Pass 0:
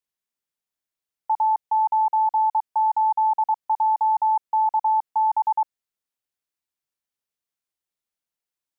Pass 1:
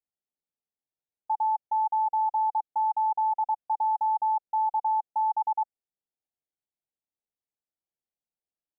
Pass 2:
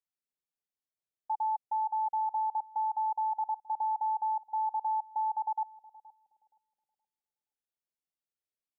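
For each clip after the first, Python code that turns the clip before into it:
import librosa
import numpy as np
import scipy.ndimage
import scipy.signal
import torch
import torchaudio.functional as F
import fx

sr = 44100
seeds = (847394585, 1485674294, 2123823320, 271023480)

y1 = scipy.signal.sosfilt(scipy.signal.ellip(4, 1.0, 40, 850.0, 'lowpass', fs=sr, output='sos'), x)
y1 = y1 * 10.0 ** (-3.0 / 20.0)
y2 = fx.echo_bbd(y1, sr, ms=472, stages=2048, feedback_pct=34, wet_db=-14.5)
y2 = y2 * 10.0 ** (-5.0 / 20.0)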